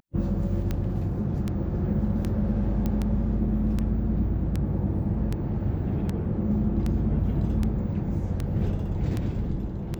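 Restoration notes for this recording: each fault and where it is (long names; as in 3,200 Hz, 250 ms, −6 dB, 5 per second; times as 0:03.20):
scratch tick 78 rpm −16 dBFS
0:02.86: click −16 dBFS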